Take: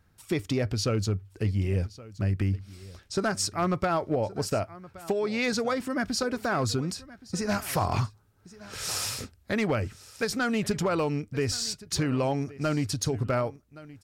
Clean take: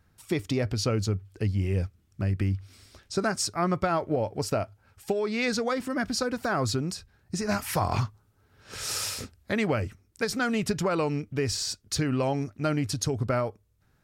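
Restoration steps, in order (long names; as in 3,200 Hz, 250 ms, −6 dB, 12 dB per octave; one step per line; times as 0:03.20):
clipped peaks rebuilt −18 dBFS
echo removal 1,121 ms −19.5 dB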